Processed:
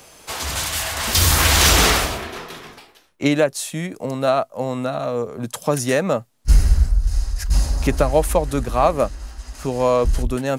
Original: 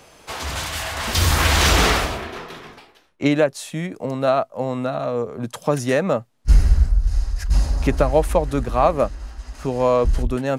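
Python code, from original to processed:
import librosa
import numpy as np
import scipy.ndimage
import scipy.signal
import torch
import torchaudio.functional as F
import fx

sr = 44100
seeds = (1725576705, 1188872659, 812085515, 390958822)

y = fx.high_shelf(x, sr, hz=5500.0, db=10.5)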